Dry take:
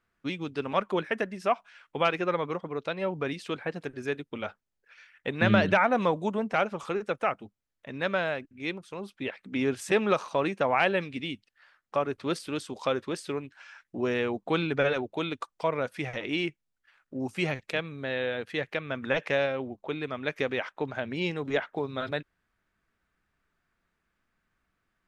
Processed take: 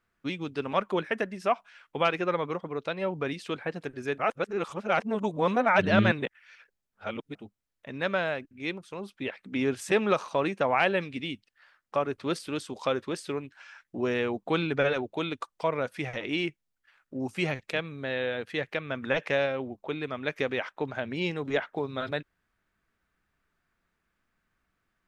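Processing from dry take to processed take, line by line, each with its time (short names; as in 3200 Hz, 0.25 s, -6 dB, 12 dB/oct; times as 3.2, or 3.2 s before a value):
4.18–7.35 reverse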